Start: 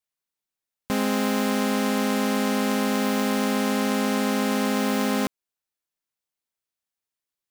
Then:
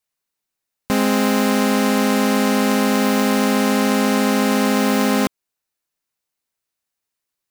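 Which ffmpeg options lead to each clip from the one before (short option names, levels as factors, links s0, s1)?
-af "bandreject=f=3300:w=19,volume=2.11"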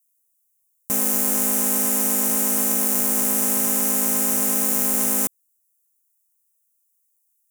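-af "aexciter=amount=12.5:drive=7:freq=6300,volume=0.251"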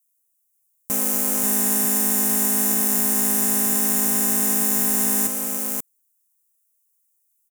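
-af "aecho=1:1:534:0.631,volume=0.891"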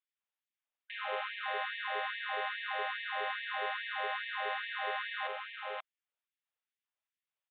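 -af "aresample=8000,aresample=44100,afftfilt=real='re*gte(b*sr/1024,420*pow(1700/420,0.5+0.5*sin(2*PI*2.4*pts/sr)))':imag='im*gte(b*sr/1024,420*pow(1700/420,0.5+0.5*sin(2*PI*2.4*pts/sr)))':win_size=1024:overlap=0.75"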